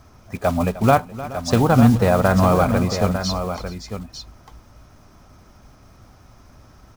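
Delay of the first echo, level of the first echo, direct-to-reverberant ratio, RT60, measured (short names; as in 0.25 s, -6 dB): 0.305 s, -16.5 dB, none, none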